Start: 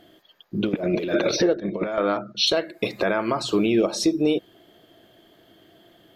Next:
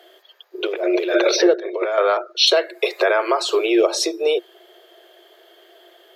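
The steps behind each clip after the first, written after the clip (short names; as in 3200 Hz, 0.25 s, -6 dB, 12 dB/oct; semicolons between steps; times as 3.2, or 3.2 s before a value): Chebyshev high-pass 350 Hz, order 8; gain +6.5 dB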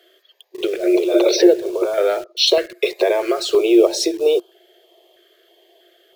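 dynamic EQ 340 Hz, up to +5 dB, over -29 dBFS, Q 1.2; in parallel at -7 dB: bit-crush 5-bit; on the sum: stepped notch 3.1 Hz 860–1900 Hz; gain -3 dB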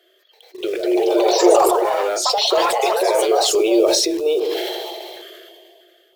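on a send at -13 dB: reverb RT60 0.45 s, pre-delay 3 ms; on the sum: echoes that change speed 0.333 s, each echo +4 st, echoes 3; sustainer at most 23 dB/s; gain -4 dB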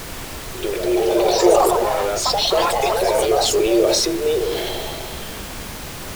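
added noise pink -30 dBFS; gain -1 dB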